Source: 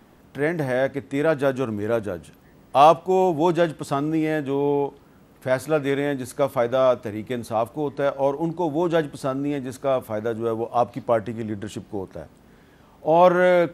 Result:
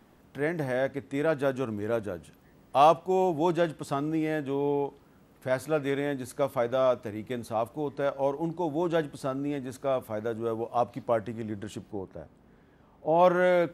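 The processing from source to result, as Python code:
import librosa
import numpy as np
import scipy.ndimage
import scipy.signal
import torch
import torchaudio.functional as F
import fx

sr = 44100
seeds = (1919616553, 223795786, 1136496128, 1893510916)

y = fx.high_shelf(x, sr, hz=2700.0, db=-10.5, at=(11.9, 13.18), fade=0.02)
y = y * 10.0 ** (-6.0 / 20.0)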